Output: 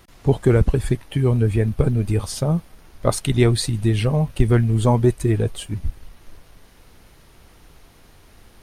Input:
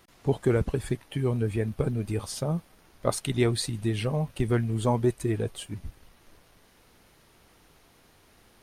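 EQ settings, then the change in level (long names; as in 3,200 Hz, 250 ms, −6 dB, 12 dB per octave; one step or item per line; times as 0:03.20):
low-shelf EQ 86 Hz +12 dB
+6.0 dB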